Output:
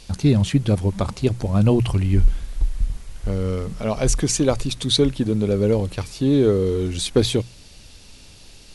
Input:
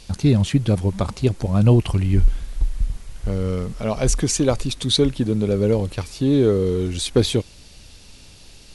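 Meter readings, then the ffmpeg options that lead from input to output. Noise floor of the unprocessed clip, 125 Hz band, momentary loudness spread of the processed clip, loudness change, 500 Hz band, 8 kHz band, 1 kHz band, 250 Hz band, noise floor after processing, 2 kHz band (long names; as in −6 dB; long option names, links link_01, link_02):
−45 dBFS, −1.0 dB, 10 LU, −0.5 dB, 0.0 dB, 0.0 dB, 0.0 dB, 0.0 dB, −45 dBFS, 0.0 dB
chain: -af "bandreject=frequency=60:width_type=h:width=6,bandreject=frequency=120:width_type=h:width=6,bandreject=frequency=180:width_type=h:width=6"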